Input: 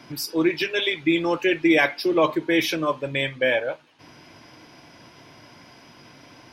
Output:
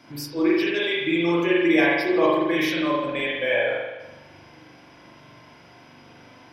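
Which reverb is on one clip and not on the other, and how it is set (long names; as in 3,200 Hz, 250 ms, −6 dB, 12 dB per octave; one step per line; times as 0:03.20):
spring reverb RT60 1.1 s, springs 41 ms, chirp 45 ms, DRR −5 dB
level −6 dB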